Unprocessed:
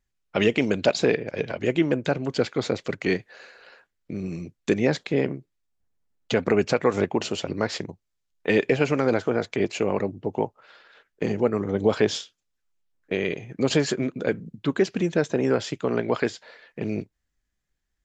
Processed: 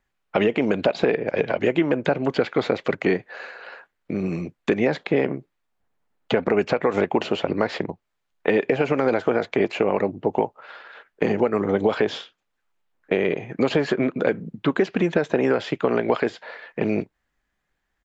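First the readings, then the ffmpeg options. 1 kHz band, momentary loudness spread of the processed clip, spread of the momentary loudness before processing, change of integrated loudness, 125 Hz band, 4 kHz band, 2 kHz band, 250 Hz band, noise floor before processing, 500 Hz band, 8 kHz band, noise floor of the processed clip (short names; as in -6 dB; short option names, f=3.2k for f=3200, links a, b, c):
+4.5 dB, 10 LU, 10 LU, +2.0 dB, -0.5 dB, -1.5 dB, +2.0 dB, +2.0 dB, -79 dBFS, +2.5 dB, n/a, -77 dBFS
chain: -filter_complex "[0:a]firequalizer=gain_entry='entry(100,0);entry(170,5);entry(800,13);entry(5500,-1)':delay=0.05:min_phase=1,alimiter=limit=-3dB:level=0:latency=1:release=102,acrossover=split=850|1700|4500[a][b][c][d];[a]acompressor=threshold=-17dB:ratio=4[e];[b]acompressor=threshold=-36dB:ratio=4[f];[c]acompressor=threshold=-32dB:ratio=4[g];[d]acompressor=threshold=-53dB:ratio=4[h];[e][f][g][h]amix=inputs=4:normalize=0"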